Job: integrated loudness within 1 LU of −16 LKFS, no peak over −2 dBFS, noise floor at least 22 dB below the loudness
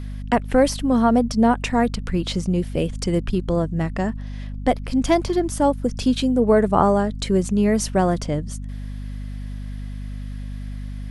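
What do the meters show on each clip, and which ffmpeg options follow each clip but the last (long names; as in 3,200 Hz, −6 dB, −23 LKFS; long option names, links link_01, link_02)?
mains hum 50 Hz; hum harmonics up to 250 Hz; level of the hum −28 dBFS; integrated loudness −21.0 LKFS; sample peak −3.0 dBFS; target loudness −16.0 LKFS
→ -af "bandreject=frequency=50:width_type=h:width=6,bandreject=frequency=100:width_type=h:width=6,bandreject=frequency=150:width_type=h:width=6,bandreject=frequency=200:width_type=h:width=6,bandreject=frequency=250:width_type=h:width=6"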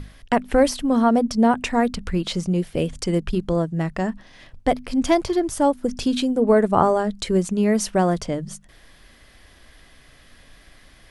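mains hum none found; integrated loudness −21.5 LKFS; sample peak −3.0 dBFS; target loudness −16.0 LKFS
→ -af "volume=5.5dB,alimiter=limit=-2dB:level=0:latency=1"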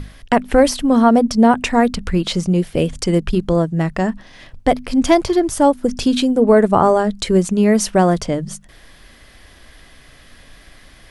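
integrated loudness −16.0 LKFS; sample peak −2.0 dBFS; background noise floor −46 dBFS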